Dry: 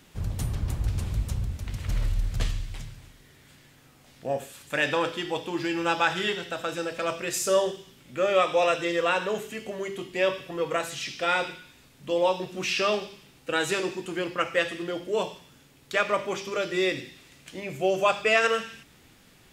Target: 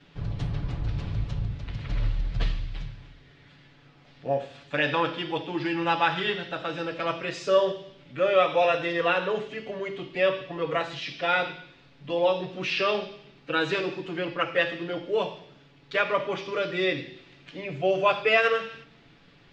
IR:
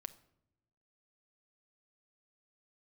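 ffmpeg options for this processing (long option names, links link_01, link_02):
-filter_complex "[0:a]lowpass=frequency=4400:width=0.5412,lowpass=frequency=4400:width=1.3066,asplit=2[link_01][link_02];[1:a]atrim=start_sample=2205,adelay=7[link_03];[link_02][link_03]afir=irnorm=-1:irlink=0,volume=11dB[link_04];[link_01][link_04]amix=inputs=2:normalize=0,volume=-7dB"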